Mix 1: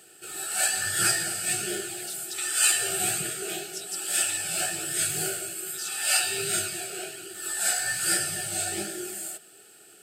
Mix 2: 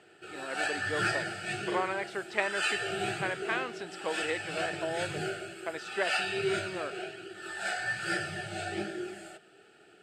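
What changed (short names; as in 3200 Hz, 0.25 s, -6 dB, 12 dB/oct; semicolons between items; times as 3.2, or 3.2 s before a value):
speech: remove inverse Chebyshev high-pass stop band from 700 Hz, stop band 70 dB; master: add LPF 2600 Hz 12 dB/oct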